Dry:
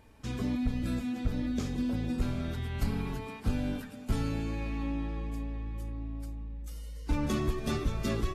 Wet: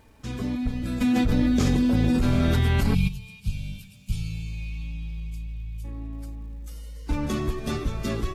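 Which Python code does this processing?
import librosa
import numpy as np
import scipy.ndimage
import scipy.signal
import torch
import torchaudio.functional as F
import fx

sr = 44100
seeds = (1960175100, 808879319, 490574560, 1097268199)

y = fx.spec_box(x, sr, start_s=2.94, length_s=2.91, low_hz=200.0, high_hz=2200.0, gain_db=-23)
y = fx.dmg_crackle(y, sr, seeds[0], per_s=550.0, level_db=-60.0)
y = fx.env_flatten(y, sr, amount_pct=100, at=(1.0, 3.07), fade=0.02)
y = y * 10.0 ** (3.0 / 20.0)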